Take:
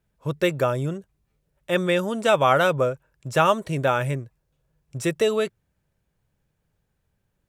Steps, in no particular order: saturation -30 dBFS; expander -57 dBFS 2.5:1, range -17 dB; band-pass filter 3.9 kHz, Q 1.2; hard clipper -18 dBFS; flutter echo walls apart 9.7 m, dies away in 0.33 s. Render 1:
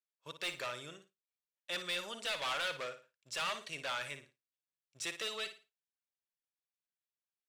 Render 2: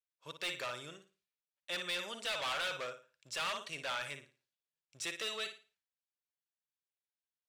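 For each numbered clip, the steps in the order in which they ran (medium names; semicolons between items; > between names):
hard clipper > band-pass filter > saturation > flutter echo > expander; expander > flutter echo > hard clipper > band-pass filter > saturation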